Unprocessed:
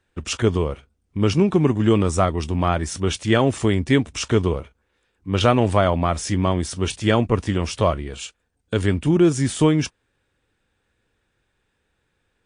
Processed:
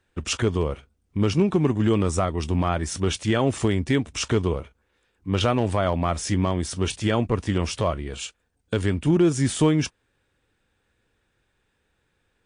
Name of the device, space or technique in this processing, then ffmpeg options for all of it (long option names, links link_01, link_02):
limiter into clipper: -af "alimiter=limit=-10.5dB:level=0:latency=1:release=309,asoftclip=type=hard:threshold=-11.5dB"